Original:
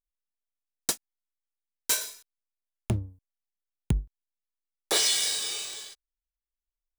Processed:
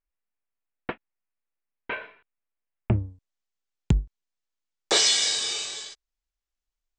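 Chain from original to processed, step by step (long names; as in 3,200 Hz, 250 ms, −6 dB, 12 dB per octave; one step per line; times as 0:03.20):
Butterworth low-pass 2,700 Hz 48 dB per octave, from 0:02.98 7,900 Hz
level +4.5 dB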